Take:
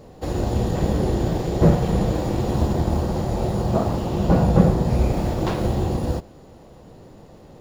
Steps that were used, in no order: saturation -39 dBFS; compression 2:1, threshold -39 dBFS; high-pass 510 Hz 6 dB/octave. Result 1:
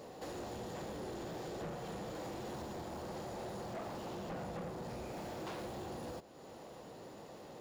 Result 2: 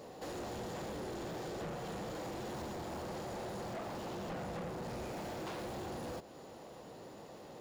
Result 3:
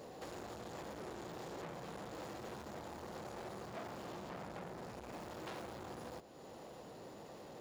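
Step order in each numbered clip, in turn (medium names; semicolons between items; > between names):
compression > high-pass > saturation; high-pass > compression > saturation; compression > saturation > high-pass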